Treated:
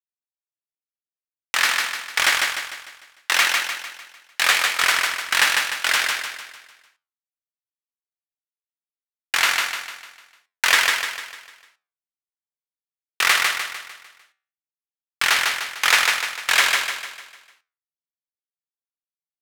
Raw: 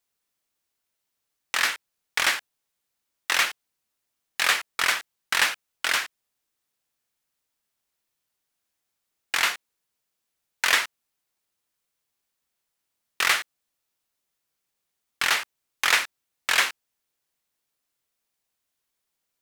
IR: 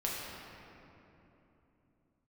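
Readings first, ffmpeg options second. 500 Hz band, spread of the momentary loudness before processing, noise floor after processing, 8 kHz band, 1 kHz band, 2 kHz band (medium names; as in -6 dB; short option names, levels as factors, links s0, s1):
+4.5 dB, 14 LU, under -85 dBFS, +6.0 dB, +5.5 dB, +6.0 dB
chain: -filter_complex "[0:a]equalizer=f=240:t=o:w=2.2:g=-3.5,acrusher=bits=10:mix=0:aa=0.000001,flanger=delay=9.4:depth=5.7:regen=-78:speed=0.85:shape=sinusoidal,asplit=2[s0][s1];[s1]aecho=0:1:150|300|450|600|750|900:0.668|0.307|0.141|0.0651|0.0299|0.0138[s2];[s0][s2]amix=inputs=2:normalize=0,volume=2.66"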